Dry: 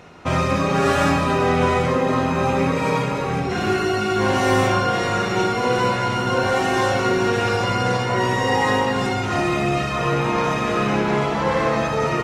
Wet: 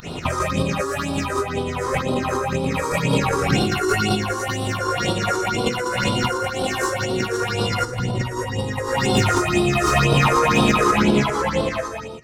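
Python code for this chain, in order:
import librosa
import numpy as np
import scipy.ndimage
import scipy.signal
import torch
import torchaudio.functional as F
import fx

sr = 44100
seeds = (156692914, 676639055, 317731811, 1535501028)

y = fx.fade_out_tail(x, sr, length_s=3.98)
y = fx.high_shelf(y, sr, hz=3800.0, db=9.0)
y = fx.volume_shaper(y, sr, bpm=154, per_beat=2, depth_db=-21, release_ms=90.0, shape='fast start')
y = fx.low_shelf(y, sr, hz=250.0, db=11.5, at=(7.85, 8.85), fade=0.02)
y = y + 10.0 ** (-3.5 / 20.0) * np.pad(y, (int(116 * sr / 1000.0), 0))[:len(y)]
y = fx.over_compress(y, sr, threshold_db=-27.0, ratio=-1.0)
y = fx.phaser_stages(y, sr, stages=6, low_hz=170.0, high_hz=1900.0, hz=2.0, feedback_pct=35)
y = fx.slew_limit(y, sr, full_power_hz=170.0)
y = F.gain(torch.from_numpy(y), 8.0).numpy()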